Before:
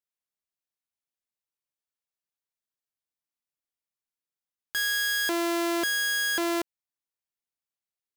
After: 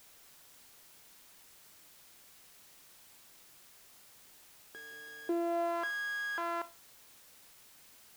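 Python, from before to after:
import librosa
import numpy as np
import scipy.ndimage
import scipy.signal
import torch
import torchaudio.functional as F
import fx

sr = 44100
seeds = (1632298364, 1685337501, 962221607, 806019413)

y = fx.rev_schroeder(x, sr, rt60_s=0.32, comb_ms=25, drr_db=14.5)
y = fx.filter_sweep_bandpass(y, sr, from_hz=380.0, to_hz=1100.0, start_s=5.29, end_s=5.86, q=2.3)
y = fx.dmg_noise_colour(y, sr, seeds[0], colour='white', level_db=-59.0)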